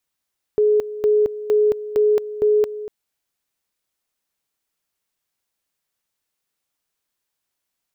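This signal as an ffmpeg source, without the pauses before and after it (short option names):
-f lavfi -i "aevalsrc='pow(10,(-12.5-14.5*gte(mod(t,0.46),0.22))/20)*sin(2*PI*422*t)':d=2.3:s=44100"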